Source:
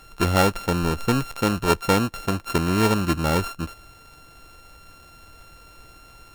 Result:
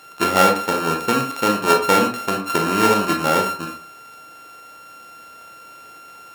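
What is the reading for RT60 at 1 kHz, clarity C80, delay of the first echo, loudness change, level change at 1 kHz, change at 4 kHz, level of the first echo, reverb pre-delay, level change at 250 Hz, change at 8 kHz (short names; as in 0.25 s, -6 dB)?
0.50 s, 12.0 dB, none, +4.5 dB, +7.5 dB, +4.5 dB, none, 22 ms, +0.5 dB, +5.0 dB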